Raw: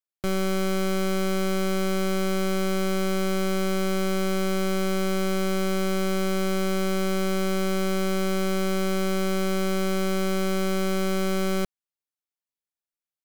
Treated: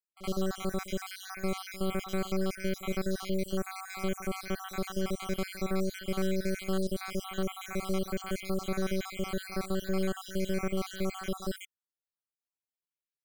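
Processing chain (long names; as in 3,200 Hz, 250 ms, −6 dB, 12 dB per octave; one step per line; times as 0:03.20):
time-frequency cells dropped at random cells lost 62%
echo ahead of the sound 68 ms −16 dB
level −4.5 dB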